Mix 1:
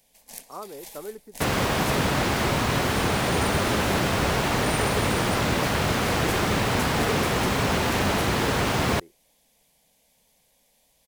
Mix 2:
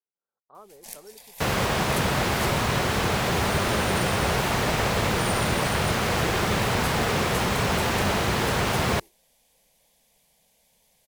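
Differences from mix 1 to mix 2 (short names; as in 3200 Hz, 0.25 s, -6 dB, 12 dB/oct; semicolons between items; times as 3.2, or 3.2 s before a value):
speech -10.0 dB; first sound: entry +0.55 s; master: add bell 280 Hz -6.5 dB 0.32 oct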